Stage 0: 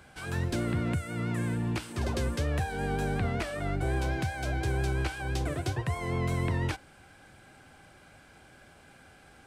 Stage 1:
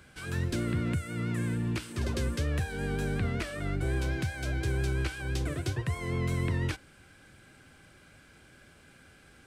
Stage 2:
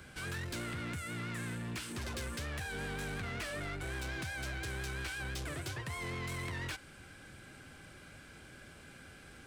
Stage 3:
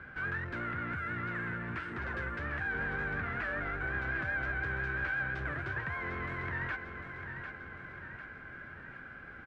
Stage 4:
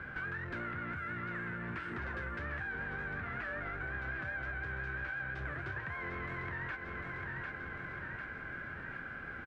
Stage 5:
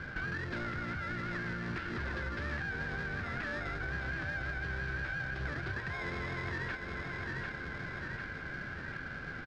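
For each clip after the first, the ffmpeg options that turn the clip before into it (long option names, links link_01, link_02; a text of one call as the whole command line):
ffmpeg -i in.wav -af "equalizer=frequency=780:width=1.9:gain=-9.5" out.wav
ffmpeg -i in.wav -filter_complex "[0:a]acrossover=split=730|3200[link_01][link_02][link_03];[link_01]acompressor=threshold=-38dB:ratio=6[link_04];[link_04][link_02][link_03]amix=inputs=3:normalize=0,asoftclip=type=tanh:threshold=-39dB,volume=3dB" out.wav
ffmpeg -i in.wav -af "lowpass=frequency=1600:width_type=q:width=2.9,aecho=1:1:749|1498|2247|2996|3745|4494:0.398|0.207|0.108|0.056|0.0291|0.0151" out.wav
ffmpeg -i in.wav -filter_complex "[0:a]acompressor=threshold=-42dB:ratio=5,asplit=2[link_01][link_02];[link_02]adelay=29,volume=-13dB[link_03];[link_01][link_03]amix=inputs=2:normalize=0,volume=4dB" out.wav
ffmpeg -i in.wav -filter_complex "[0:a]asplit=2[link_01][link_02];[link_02]acrusher=samples=30:mix=1:aa=0.000001,volume=-6dB[link_03];[link_01][link_03]amix=inputs=2:normalize=0,lowpass=frequency=4600:width_type=q:width=2.4" out.wav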